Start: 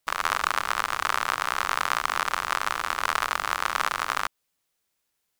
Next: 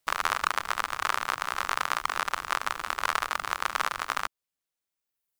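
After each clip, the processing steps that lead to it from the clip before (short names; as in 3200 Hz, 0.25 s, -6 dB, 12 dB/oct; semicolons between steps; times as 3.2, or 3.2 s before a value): reverb removal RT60 1.6 s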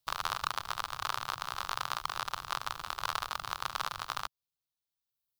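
graphic EQ 125/250/500/2000/4000/8000 Hz +8/-10/-5/-11/+5/-6 dB; gain -2.5 dB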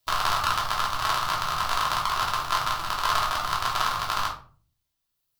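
shoebox room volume 310 m³, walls furnished, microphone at 3 m; gain +5 dB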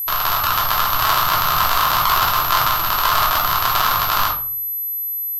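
AGC gain up to 16 dB; whine 12000 Hz -25 dBFS; maximiser +4.5 dB; gain -1 dB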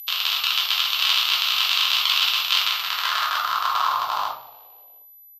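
resonant high shelf 2500 Hz +9.5 dB, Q 1.5; band-pass sweep 2600 Hz -> 790 Hz, 2.55–4.32; frequency-shifting echo 0.177 s, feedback 55%, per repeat -77 Hz, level -22 dB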